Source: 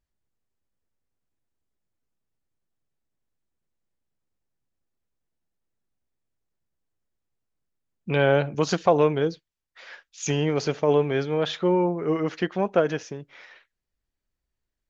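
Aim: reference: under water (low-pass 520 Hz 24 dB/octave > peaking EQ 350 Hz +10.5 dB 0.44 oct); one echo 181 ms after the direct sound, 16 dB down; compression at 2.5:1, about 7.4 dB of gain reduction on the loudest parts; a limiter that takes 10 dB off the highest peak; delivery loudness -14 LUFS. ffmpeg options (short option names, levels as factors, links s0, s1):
-af "acompressor=threshold=0.0562:ratio=2.5,alimiter=limit=0.0944:level=0:latency=1,lowpass=f=520:w=0.5412,lowpass=f=520:w=1.3066,equalizer=f=350:t=o:w=0.44:g=10.5,aecho=1:1:181:0.158,volume=5.01"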